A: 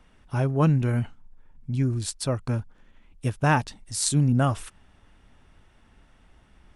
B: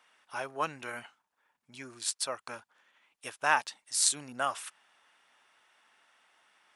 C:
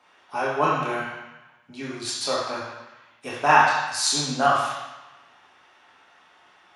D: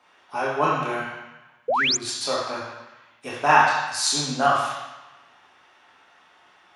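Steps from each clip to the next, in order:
high-pass filter 910 Hz 12 dB per octave
convolution reverb RT60 1.0 s, pre-delay 3 ms, DRR −6 dB; level −3 dB
sound drawn into the spectrogram rise, 0:01.68–0:01.97, 440–7,600 Hz −21 dBFS

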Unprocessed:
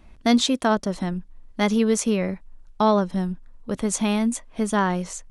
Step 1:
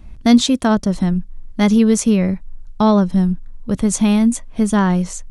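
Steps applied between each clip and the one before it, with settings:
bass and treble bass +11 dB, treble +3 dB
level +2 dB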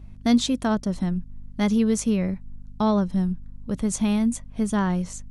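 mains hum 50 Hz, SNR 20 dB
level −8 dB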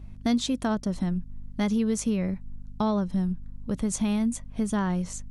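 downward compressor 2 to 1, threshold −25 dBFS, peak gain reduction 6.5 dB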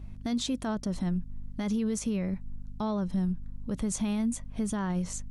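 brickwall limiter −22.5 dBFS, peak gain reduction 8.5 dB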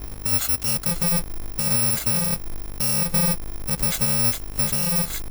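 samples in bit-reversed order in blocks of 128 samples
level +8 dB

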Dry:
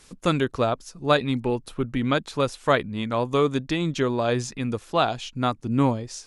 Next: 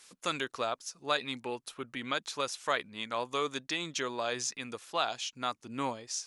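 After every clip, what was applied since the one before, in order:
high-pass filter 1,400 Hz 6 dB per octave
dynamic equaliser 6,000 Hz, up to +5 dB, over −51 dBFS, Q 2.2
in parallel at +0.5 dB: brickwall limiter −19.5 dBFS, peak gain reduction 11 dB
on the sum: level −8 dB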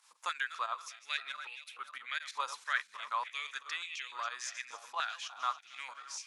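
feedback delay that plays each chunk backwards 137 ms, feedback 67%, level −11.5 dB
fake sidechain pumping 91 BPM, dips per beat 2, −11 dB, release 96 ms
high-pass on a step sequencer 3.4 Hz 950–2,400 Hz
level −7.5 dB

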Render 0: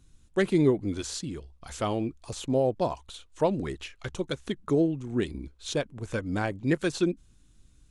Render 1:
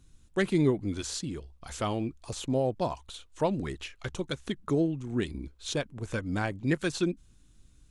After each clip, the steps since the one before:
dynamic equaliser 460 Hz, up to −4 dB, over −36 dBFS, Q 0.93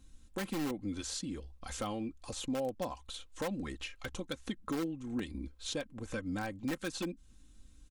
in parallel at −4.5 dB: wrap-around overflow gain 19.5 dB
on the sum: downward compressor 2 to 1, threshold −34 dBFS, peak gain reduction 8.5 dB
comb filter 3.8 ms, depth 55%
level −5.5 dB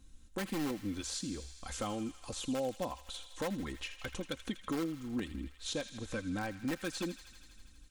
delay with a high-pass on its return 81 ms, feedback 79%, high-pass 1,600 Hz, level −11.5 dB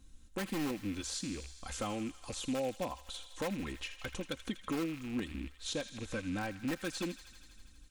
loose part that buzzes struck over −45 dBFS, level −39 dBFS

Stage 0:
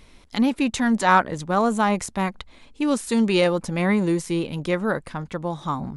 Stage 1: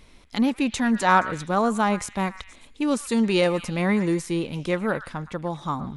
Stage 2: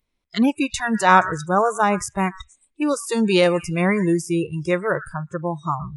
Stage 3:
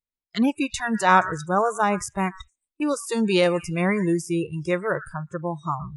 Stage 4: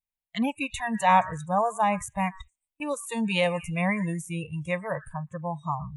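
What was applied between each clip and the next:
echo through a band-pass that steps 118 ms, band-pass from 1,600 Hz, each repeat 0.7 octaves, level −11 dB; level −1.5 dB
noise reduction from a noise print of the clip's start 29 dB; level +4.5 dB
noise gate −40 dBFS, range −19 dB; level −3 dB
phaser with its sweep stopped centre 1,400 Hz, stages 6

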